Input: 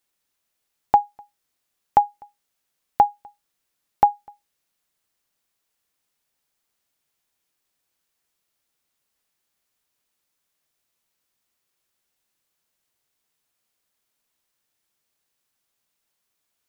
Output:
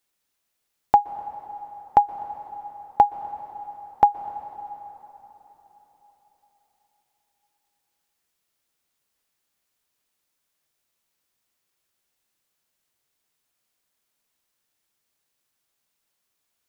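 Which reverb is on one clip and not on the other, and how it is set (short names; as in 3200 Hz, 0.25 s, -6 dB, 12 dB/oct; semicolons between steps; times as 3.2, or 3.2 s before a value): plate-style reverb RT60 4.3 s, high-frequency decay 0.8×, pre-delay 0.11 s, DRR 13 dB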